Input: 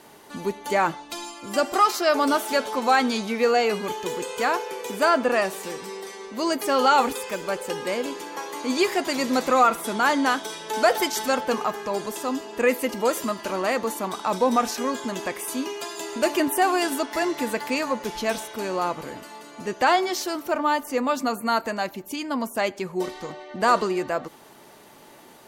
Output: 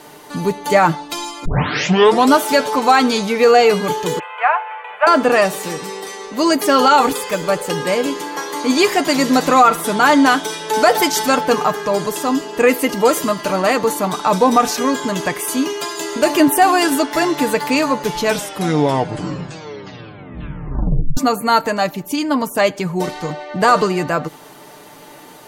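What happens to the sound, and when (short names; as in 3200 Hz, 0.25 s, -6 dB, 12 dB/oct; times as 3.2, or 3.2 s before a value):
1.45 tape start 0.88 s
4.19–5.07 elliptic band-pass 660–2600 Hz
18.23 tape stop 2.94 s
whole clip: dynamic EQ 150 Hz, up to +7 dB, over -46 dBFS, Q 1.6; comb 6.7 ms, depth 47%; maximiser +9 dB; gain -1 dB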